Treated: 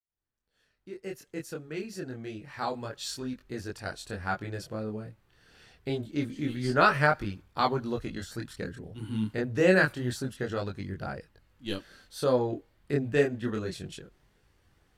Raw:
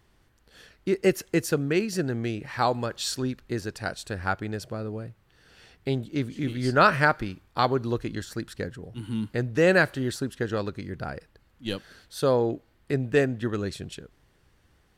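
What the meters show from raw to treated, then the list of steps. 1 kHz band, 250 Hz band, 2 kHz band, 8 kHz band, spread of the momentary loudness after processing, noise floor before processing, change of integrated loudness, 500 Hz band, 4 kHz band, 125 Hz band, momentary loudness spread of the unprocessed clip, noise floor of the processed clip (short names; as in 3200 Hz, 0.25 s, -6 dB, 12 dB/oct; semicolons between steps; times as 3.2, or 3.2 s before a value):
-3.5 dB, -4.0 dB, -3.0 dB, -6.5 dB, 17 LU, -64 dBFS, -3.5 dB, -4.0 dB, -4.5 dB, -4.0 dB, 15 LU, -73 dBFS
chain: opening faded in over 4.69 s; chorus voices 2, 0.27 Hz, delay 24 ms, depth 4.2 ms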